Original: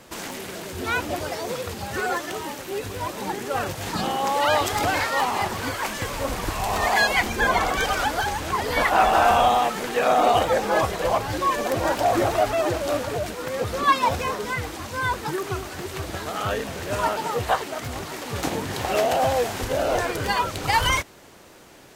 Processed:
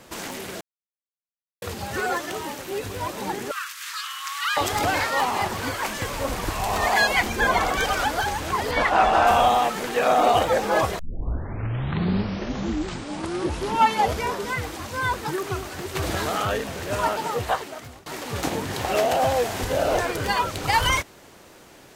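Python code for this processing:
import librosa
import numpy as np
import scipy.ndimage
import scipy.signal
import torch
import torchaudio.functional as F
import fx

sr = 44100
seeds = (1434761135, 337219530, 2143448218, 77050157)

y = fx.steep_highpass(x, sr, hz=1100.0, slope=72, at=(3.51, 4.57))
y = fx.air_absorb(y, sr, metres=56.0, at=(8.71, 9.27))
y = fx.env_flatten(y, sr, amount_pct=70, at=(15.95, 16.57))
y = fx.room_flutter(y, sr, wall_m=9.1, rt60_s=0.41, at=(19.45, 20.0))
y = fx.edit(y, sr, fx.silence(start_s=0.61, length_s=1.01),
    fx.tape_start(start_s=10.99, length_s=3.53),
    fx.fade_out_to(start_s=17.1, length_s=0.96, curve='qsin', floor_db=-23.5), tone=tone)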